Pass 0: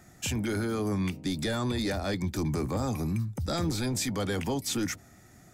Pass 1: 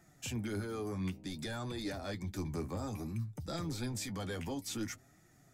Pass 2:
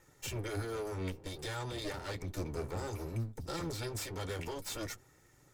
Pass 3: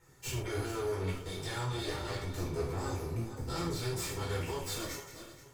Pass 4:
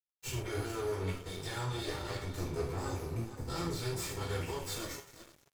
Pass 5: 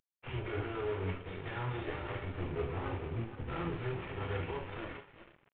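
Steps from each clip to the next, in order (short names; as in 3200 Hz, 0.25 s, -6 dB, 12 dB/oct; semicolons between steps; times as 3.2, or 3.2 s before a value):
flange 0.57 Hz, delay 5.8 ms, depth 6.5 ms, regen +36%; gain -5.5 dB
minimum comb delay 2.2 ms; gain +2 dB
regenerating reverse delay 0.238 s, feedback 49%, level -10 dB; non-linear reverb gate 0.15 s falling, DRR -6.5 dB; gain -5 dB
crossover distortion -51 dBFS
CVSD 16 kbps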